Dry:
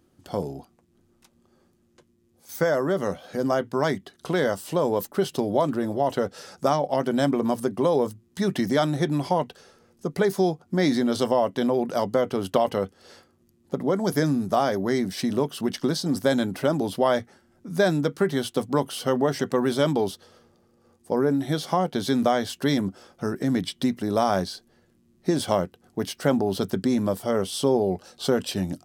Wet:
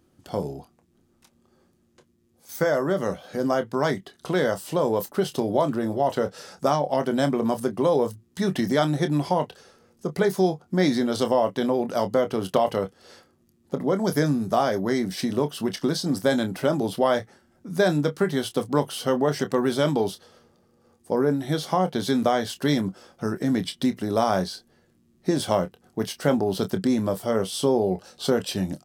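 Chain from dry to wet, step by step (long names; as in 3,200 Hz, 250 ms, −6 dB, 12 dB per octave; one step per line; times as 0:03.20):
double-tracking delay 27 ms −10.5 dB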